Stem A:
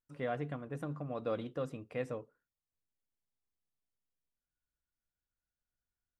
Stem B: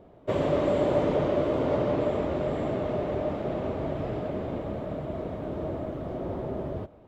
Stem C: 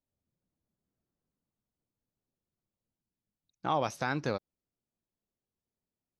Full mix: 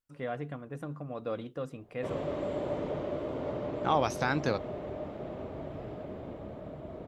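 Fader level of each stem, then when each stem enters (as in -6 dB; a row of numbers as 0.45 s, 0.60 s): +0.5 dB, -9.5 dB, +2.5 dB; 0.00 s, 1.75 s, 0.20 s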